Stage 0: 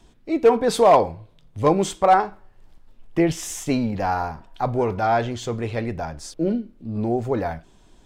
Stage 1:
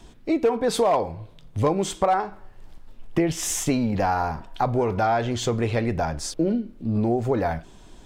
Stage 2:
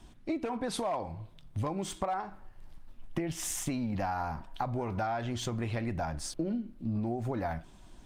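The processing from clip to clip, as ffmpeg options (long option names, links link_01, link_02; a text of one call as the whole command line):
ffmpeg -i in.wav -af "acompressor=threshold=-26dB:ratio=4,volume=6dB" out.wav
ffmpeg -i in.wav -af "equalizer=frequency=450:width=3.9:gain=-10,acompressor=threshold=-24dB:ratio=6,volume=-5dB" -ar 48000 -c:a libopus -b:a 32k out.opus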